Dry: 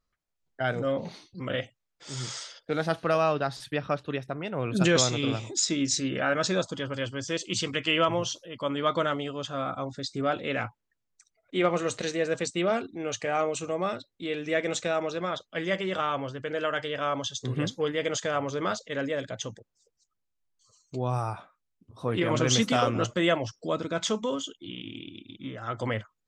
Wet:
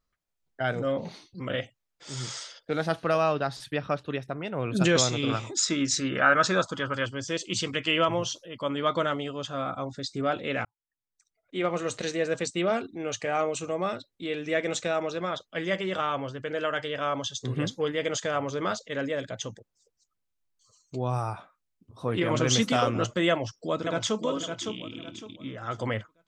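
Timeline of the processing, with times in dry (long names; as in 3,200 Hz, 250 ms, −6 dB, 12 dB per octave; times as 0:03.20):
0:05.29–0:07.06: parametric band 1,300 Hz +10 dB 0.96 octaves
0:10.65–0:12.10: fade in
0:23.30–0:24.21: delay throw 560 ms, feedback 30%, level −6 dB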